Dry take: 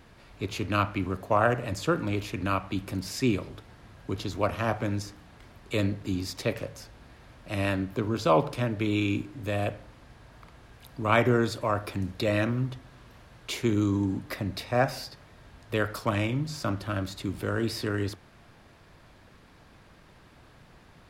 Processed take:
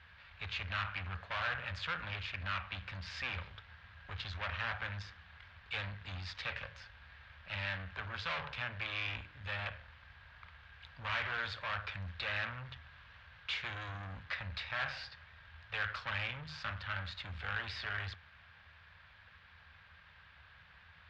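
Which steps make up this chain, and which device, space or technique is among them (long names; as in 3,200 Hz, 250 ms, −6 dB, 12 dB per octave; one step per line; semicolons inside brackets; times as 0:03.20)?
scooped metal amplifier (tube saturation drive 33 dB, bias 0.7; loudspeaker in its box 75–3,500 Hz, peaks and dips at 78 Hz +10 dB, 120 Hz −5 dB, 380 Hz −5 dB, 670 Hz −4 dB, 1,600 Hz +6 dB; guitar amp tone stack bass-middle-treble 10-0-10)
level +7.5 dB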